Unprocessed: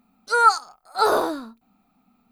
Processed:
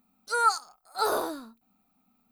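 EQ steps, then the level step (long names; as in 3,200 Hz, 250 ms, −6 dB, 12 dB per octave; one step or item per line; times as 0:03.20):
high-shelf EQ 7,400 Hz +11.5 dB
−8.0 dB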